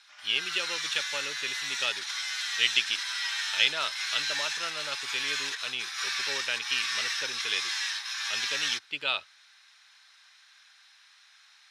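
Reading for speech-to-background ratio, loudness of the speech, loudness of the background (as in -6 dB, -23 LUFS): -1.0 dB, -31.5 LUFS, -30.5 LUFS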